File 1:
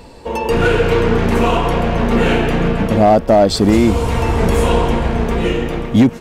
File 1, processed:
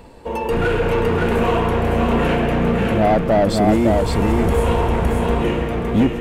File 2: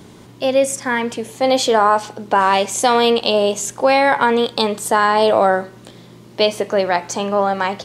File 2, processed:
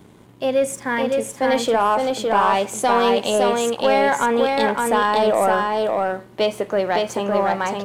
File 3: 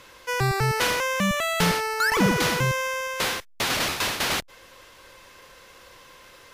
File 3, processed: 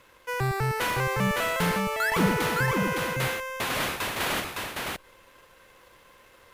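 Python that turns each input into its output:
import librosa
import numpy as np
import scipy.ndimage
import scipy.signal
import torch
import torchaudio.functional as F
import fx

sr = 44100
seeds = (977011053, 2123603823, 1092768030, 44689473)

p1 = fx.peak_eq(x, sr, hz=5200.0, db=-8.0, octaves=1.2)
p2 = fx.leveller(p1, sr, passes=1)
p3 = p2 + fx.echo_single(p2, sr, ms=561, db=-3.0, dry=0)
y = p3 * 10.0 ** (-6.5 / 20.0)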